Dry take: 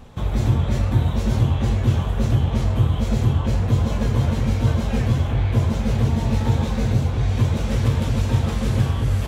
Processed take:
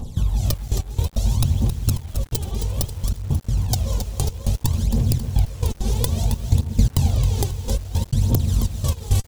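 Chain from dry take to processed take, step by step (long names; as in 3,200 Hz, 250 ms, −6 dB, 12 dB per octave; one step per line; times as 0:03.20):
loose part that buzzes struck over −17 dBFS, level −24 dBFS
wrap-around overflow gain 8.5 dB
flat-topped bell 1,800 Hz −9 dB 1.3 octaves
repeating echo 195 ms, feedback 55%, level −24 dB
gate pattern "xxxxxx..x..x." 168 BPM −60 dB
single-tap delay 540 ms −17 dB
phase shifter 0.6 Hz, delay 2.7 ms, feedback 69%
downward compressor 4 to 1, threshold −21 dBFS, peak gain reduction 14.5 dB
bass and treble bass +5 dB, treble +13 dB
automatic gain control gain up to 6.5 dB
feedback echo at a low word length 269 ms, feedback 35%, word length 6 bits, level −9 dB
level −1 dB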